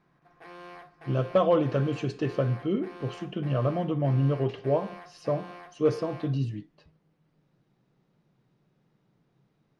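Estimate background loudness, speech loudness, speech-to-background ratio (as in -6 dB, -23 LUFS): -47.0 LUFS, -28.0 LUFS, 19.0 dB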